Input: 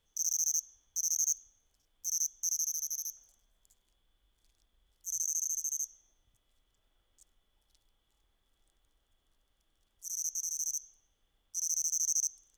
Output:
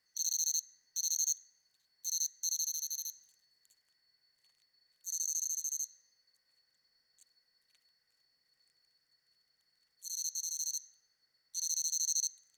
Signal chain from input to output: four frequency bands reordered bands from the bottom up 2341; trim -2 dB

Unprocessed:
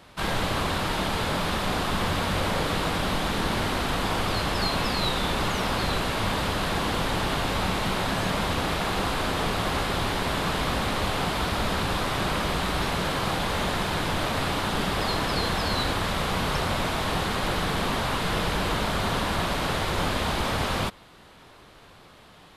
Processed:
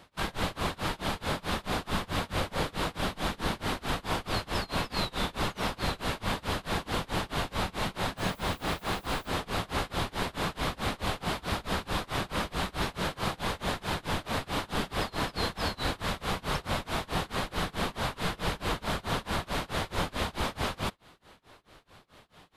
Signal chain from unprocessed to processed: tremolo 4.6 Hz, depth 97%; 8.17–9.29 s: added noise violet -56 dBFS; trim -2 dB

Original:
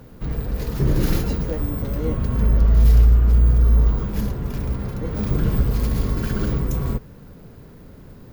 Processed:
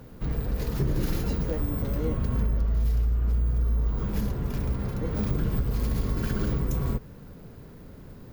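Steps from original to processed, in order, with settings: compression 6:1, threshold -19 dBFS, peak gain reduction 10 dB; trim -2.5 dB

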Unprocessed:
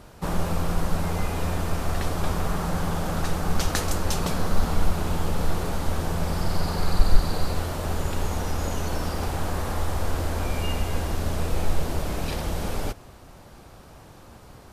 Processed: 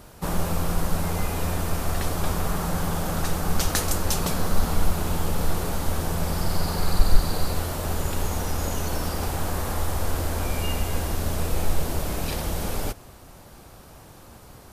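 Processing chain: treble shelf 8.7 kHz +10.5 dB

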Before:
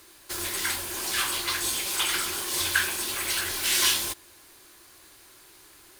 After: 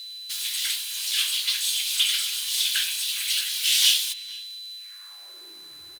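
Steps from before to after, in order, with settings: echo from a far wall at 79 m, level -18 dB; whistle 4 kHz -42 dBFS; high-pass sweep 3.2 kHz -> 72 Hz, 4.75–5.92 s

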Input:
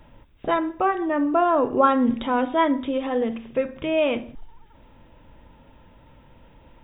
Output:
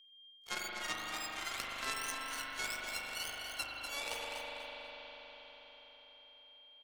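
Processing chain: spectrum inverted on a logarithmic axis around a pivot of 1.2 kHz; gate -57 dBFS, range -32 dB; reverse; compression 10:1, threshold -30 dBFS, peak gain reduction 15 dB; reverse; harmony voices +7 st -1 dB; power-law waveshaper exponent 3; whistle 3.2 kHz -73 dBFS; on a send: feedback delay 244 ms, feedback 21%, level -8 dB; on the sum: spring tank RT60 3.7 s, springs 40 ms, chirp 55 ms, DRR -3 dB; three bands compressed up and down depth 40%; trim +2 dB

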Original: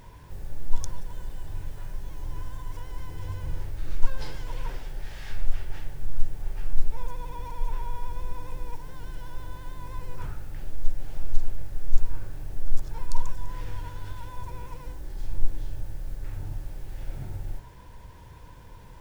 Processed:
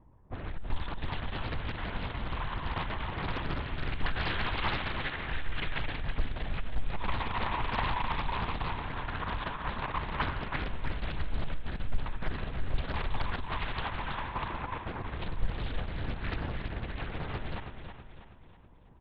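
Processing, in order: peaking EQ 200 Hz +11.5 dB 0.92 oct; in parallel at -5 dB: fuzz box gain 34 dB, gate -33 dBFS; on the sum: LPC vocoder at 8 kHz whisper; level-controlled noise filter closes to 460 Hz, open at -14 dBFS; tilt shelf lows -8.5 dB, about 770 Hz; feedback delay 323 ms, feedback 45%, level -7.5 dB; on a send at -20 dB: reverberation, pre-delay 46 ms; on the sum: loudspeaker Doppler distortion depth 0.88 ms; trim -6 dB

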